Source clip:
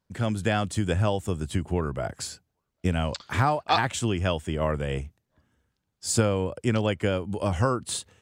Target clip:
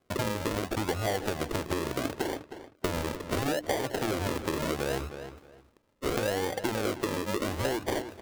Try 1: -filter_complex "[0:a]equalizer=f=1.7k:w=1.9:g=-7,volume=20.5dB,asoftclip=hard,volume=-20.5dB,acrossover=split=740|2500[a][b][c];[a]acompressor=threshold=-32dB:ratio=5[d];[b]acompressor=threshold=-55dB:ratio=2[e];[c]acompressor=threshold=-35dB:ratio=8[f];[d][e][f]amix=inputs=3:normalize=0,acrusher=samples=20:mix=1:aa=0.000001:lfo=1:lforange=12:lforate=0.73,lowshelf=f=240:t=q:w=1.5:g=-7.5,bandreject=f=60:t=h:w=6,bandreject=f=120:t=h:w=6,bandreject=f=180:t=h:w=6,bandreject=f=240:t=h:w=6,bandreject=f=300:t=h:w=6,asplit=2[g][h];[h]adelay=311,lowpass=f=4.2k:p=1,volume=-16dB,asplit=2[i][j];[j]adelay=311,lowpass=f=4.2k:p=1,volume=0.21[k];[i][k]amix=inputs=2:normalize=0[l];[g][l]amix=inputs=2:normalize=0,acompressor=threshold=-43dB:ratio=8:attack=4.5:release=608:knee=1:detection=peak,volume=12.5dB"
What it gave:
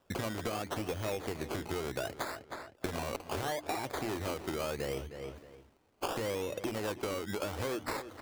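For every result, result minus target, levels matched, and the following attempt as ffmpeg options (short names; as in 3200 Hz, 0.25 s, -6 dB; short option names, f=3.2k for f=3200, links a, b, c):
compressor: peak gain reduction +6 dB; decimation with a swept rate: distortion -6 dB
-filter_complex "[0:a]equalizer=f=1.7k:w=1.9:g=-7,volume=20.5dB,asoftclip=hard,volume=-20.5dB,acrossover=split=740|2500[a][b][c];[a]acompressor=threshold=-32dB:ratio=5[d];[b]acompressor=threshold=-55dB:ratio=2[e];[c]acompressor=threshold=-35dB:ratio=8[f];[d][e][f]amix=inputs=3:normalize=0,acrusher=samples=20:mix=1:aa=0.000001:lfo=1:lforange=12:lforate=0.73,lowshelf=f=240:t=q:w=1.5:g=-7.5,bandreject=f=60:t=h:w=6,bandreject=f=120:t=h:w=6,bandreject=f=180:t=h:w=6,bandreject=f=240:t=h:w=6,bandreject=f=300:t=h:w=6,asplit=2[g][h];[h]adelay=311,lowpass=f=4.2k:p=1,volume=-16dB,asplit=2[i][j];[j]adelay=311,lowpass=f=4.2k:p=1,volume=0.21[k];[i][k]amix=inputs=2:normalize=0[l];[g][l]amix=inputs=2:normalize=0,acompressor=threshold=-35.5dB:ratio=8:attack=4.5:release=608:knee=1:detection=peak,volume=12.5dB"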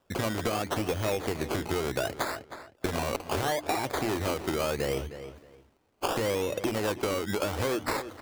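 decimation with a swept rate: distortion -6 dB
-filter_complex "[0:a]equalizer=f=1.7k:w=1.9:g=-7,volume=20.5dB,asoftclip=hard,volume=-20.5dB,acrossover=split=740|2500[a][b][c];[a]acompressor=threshold=-32dB:ratio=5[d];[b]acompressor=threshold=-55dB:ratio=2[e];[c]acompressor=threshold=-35dB:ratio=8[f];[d][e][f]amix=inputs=3:normalize=0,acrusher=samples=47:mix=1:aa=0.000001:lfo=1:lforange=28.2:lforate=0.73,lowshelf=f=240:t=q:w=1.5:g=-7.5,bandreject=f=60:t=h:w=6,bandreject=f=120:t=h:w=6,bandreject=f=180:t=h:w=6,bandreject=f=240:t=h:w=6,bandreject=f=300:t=h:w=6,asplit=2[g][h];[h]adelay=311,lowpass=f=4.2k:p=1,volume=-16dB,asplit=2[i][j];[j]adelay=311,lowpass=f=4.2k:p=1,volume=0.21[k];[i][k]amix=inputs=2:normalize=0[l];[g][l]amix=inputs=2:normalize=0,acompressor=threshold=-35.5dB:ratio=8:attack=4.5:release=608:knee=1:detection=peak,volume=12.5dB"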